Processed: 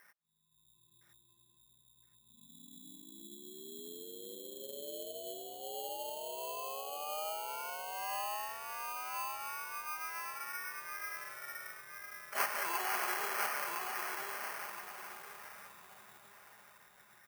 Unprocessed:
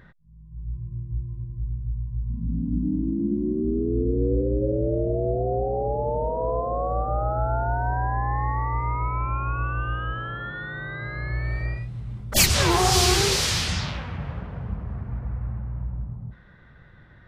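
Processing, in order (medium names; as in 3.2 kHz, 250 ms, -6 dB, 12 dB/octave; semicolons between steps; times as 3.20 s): comb 4.9 ms, depth 40%; on a send: feedback delay 1014 ms, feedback 28%, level -5 dB; on the sum: sample-and-hold 12×; in parallel at +1 dB: compression, threshold -33 dBFS, peak gain reduction 19 dB; on the sum: high-pass 1.3 kHz 12 dB/octave; peaking EQ 4.2 kHz -13.5 dB 2.6 oct; trim -6 dB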